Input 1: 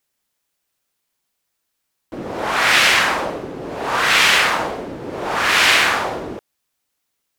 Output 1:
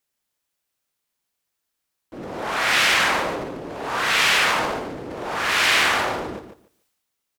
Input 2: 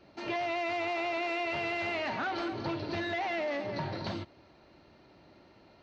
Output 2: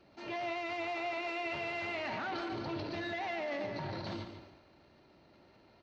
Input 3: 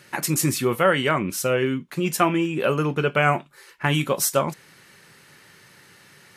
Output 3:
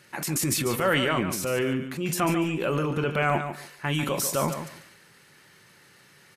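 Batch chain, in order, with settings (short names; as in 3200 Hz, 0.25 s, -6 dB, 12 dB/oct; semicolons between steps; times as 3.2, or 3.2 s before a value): transient shaper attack -3 dB, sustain +9 dB; feedback echo 0.145 s, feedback 18%, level -9 dB; gain -5 dB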